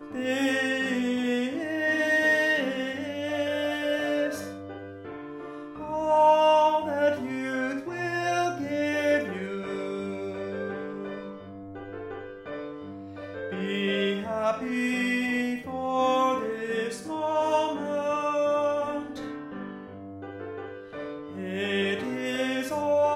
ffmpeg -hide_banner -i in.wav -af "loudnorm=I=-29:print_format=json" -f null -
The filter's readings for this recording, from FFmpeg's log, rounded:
"input_i" : "-27.2",
"input_tp" : "-9.9",
"input_lra" : "8.5",
"input_thresh" : "-38.0",